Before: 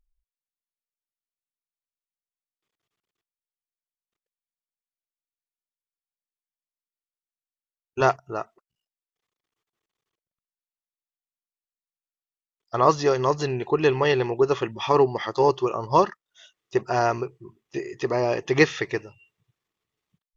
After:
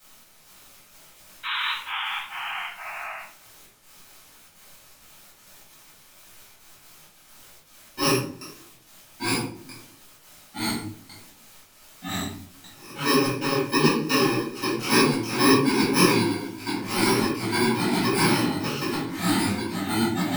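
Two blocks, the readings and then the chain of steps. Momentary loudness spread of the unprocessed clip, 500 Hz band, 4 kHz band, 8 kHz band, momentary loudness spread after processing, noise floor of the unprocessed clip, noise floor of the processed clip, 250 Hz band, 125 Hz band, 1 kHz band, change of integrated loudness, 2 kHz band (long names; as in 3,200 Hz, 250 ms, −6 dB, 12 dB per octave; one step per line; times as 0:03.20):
14 LU, −4.5 dB, +10.5 dB, can't be measured, 16 LU, below −85 dBFS, −54 dBFS, +7.5 dB, +2.5 dB, −1.5 dB, −1.0 dB, +4.5 dB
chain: samples in bit-reversed order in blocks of 64 samples
three-way crossover with the lows and the highs turned down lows −16 dB, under 190 Hz, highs −16 dB, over 5,100 Hz
background noise white −58 dBFS
gate pattern "xxx...xxxx..xx." 198 BPM −24 dB
sound drawn into the spectrogram noise, 0:01.43–0:01.72, 860–4,000 Hz −34 dBFS
delay with pitch and tempo change per echo 248 ms, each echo −2 semitones, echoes 3
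rectangular room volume 620 cubic metres, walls furnished, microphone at 7.7 metres
micro pitch shift up and down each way 55 cents
level +1.5 dB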